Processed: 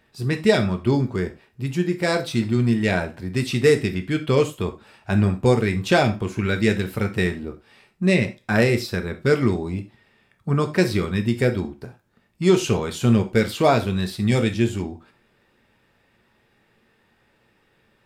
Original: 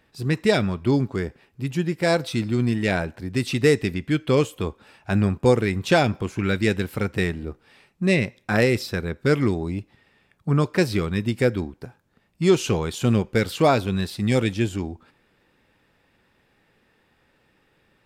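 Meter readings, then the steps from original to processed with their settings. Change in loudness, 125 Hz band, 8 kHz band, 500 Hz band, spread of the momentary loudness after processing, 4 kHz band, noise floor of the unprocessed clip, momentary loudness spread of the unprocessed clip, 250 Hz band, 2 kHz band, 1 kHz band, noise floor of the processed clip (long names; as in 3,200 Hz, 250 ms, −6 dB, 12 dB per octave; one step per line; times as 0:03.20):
+1.5 dB, +1.5 dB, +1.0 dB, +1.0 dB, 10 LU, +1.0 dB, −65 dBFS, 11 LU, +1.5 dB, +1.0 dB, +1.0 dB, −64 dBFS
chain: reverb whose tail is shaped and stops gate 120 ms falling, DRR 6 dB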